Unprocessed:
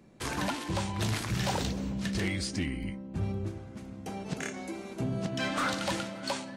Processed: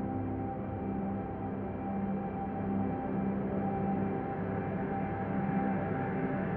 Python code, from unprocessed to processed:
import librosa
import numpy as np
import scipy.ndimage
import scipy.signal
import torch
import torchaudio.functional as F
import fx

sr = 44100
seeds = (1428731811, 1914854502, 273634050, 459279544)

y = scipy.signal.sosfilt(scipy.signal.butter(4, 1800.0, 'lowpass', fs=sr, output='sos'), x)
y = fx.paulstretch(y, sr, seeds[0], factor=20.0, window_s=1.0, from_s=3.89)
y = y * librosa.db_to_amplitude(5.5)